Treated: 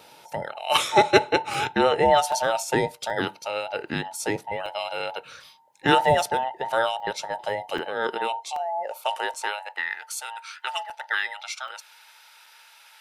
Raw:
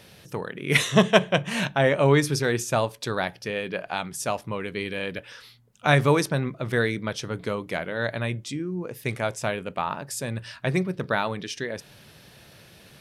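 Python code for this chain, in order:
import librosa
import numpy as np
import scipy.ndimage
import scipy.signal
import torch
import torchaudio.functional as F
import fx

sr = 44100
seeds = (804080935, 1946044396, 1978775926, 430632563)

y = fx.band_invert(x, sr, width_hz=1000)
y = fx.filter_sweep_highpass(y, sr, from_hz=120.0, to_hz=1500.0, start_s=7.53, end_s=9.97, q=1.3)
y = fx.buffer_crackle(y, sr, first_s=0.76, period_s=0.78, block=128, kind='zero')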